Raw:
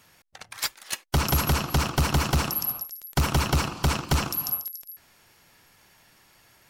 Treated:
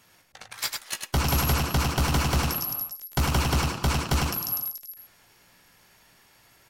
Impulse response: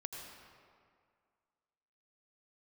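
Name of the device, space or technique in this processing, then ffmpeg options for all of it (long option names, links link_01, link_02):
slapback doubling: -filter_complex "[0:a]asplit=3[link_01][link_02][link_03];[link_02]adelay=17,volume=-7.5dB[link_04];[link_03]adelay=102,volume=-4dB[link_05];[link_01][link_04][link_05]amix=inputs=3:normalize=0,volume=-2dB"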